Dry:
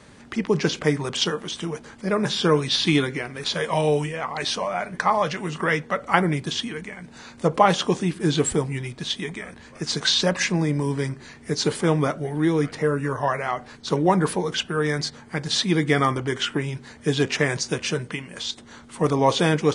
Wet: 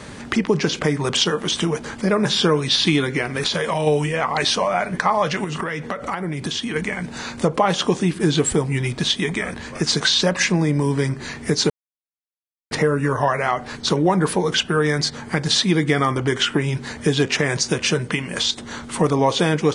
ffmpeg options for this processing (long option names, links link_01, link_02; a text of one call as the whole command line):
ffmpeg -i in.wav -filter_complex "[0:a]asplit=3[link_01][link_02][link_03];[link_01]afade=type=out:start_time=3.32:duration=0.02[link_04];[link_02]acompressor=threshold=-27dB:ratio=6:attack=3.2:release=140:knee=1:detection=peak,afade=type=in:start_time=3.32:duration=0.02,afade=type=out:start_time=3.86:duration=0.02[link_05];[link_03]afade=type=in:start_time=3.86:duration=0.02[link_06];[link_04][link_05][link_06]amix=inputs=3:normalize=0,asettb=1/sr,asplit=3[link_07][link_08][link_09];[link_07]atrim=end=5.444[link_10];[link_08]atrim=start=5.44:end=6.76,asetpts=PTS-STARTPTS,afade=type=in:duration=0.004:curve=qsin,afade=type=out:start_time=1.316:duration=0.004:curve=qsin,acompressor=threshold=-33dB:ratio=12:attack=3.2:release=140:knee=1:detection=peak[link_11];[link_09]atrim=start=6.756[link_12];[link_10][link_11]acrossfade=duration=0.004:curve1=hsin:curve2=qsin[link_13];[link_13][link_12]acrossfade=duration=0.004:curve1=qsin:curve2=hsin,asplit=3[link_14][link_15][link_16];[link_14]atrim=end=11.7,asetpts=PTS-STARTPTS,afade=type=out:start_time=11.696:duration=0.004:curve=hsin[link_17];[link_15]atrim=start=11.7:end=12.71,asetpts=PTS-STARTPTS,volume=0[link_18];[link_16]atrim=start=12.71,asetpts=PTS-STARTPTS,afade=type=in:duration=0.004:curve=hsin[link_19];[link_17][link_18][link_19]concat=n=3:v=0:a=1,acompressor=threshold=-31dB:ratio=2.5,alimiter=level_in=16.5dB:limit=-1dB:release=50:level=0:latency=1,volume=-4.5dB" out.wav